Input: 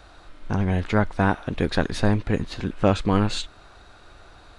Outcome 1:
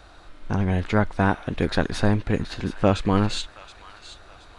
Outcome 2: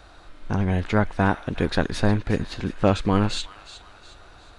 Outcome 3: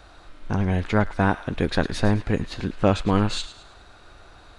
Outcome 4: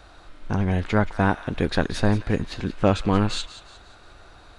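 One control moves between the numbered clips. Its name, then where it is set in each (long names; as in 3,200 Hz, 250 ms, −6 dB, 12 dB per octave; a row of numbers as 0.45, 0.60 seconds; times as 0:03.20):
delay with a high-pass on its return, delay time: 724, 361, 107, 178 milliseconds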